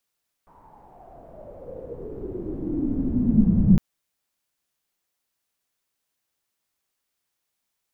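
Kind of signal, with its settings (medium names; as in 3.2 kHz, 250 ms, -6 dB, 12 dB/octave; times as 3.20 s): swept filtered noise pink, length 3.31 s lowpass, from 1 kHz, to 180 Hz, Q 8, exponential, gain ramp +39.5 dB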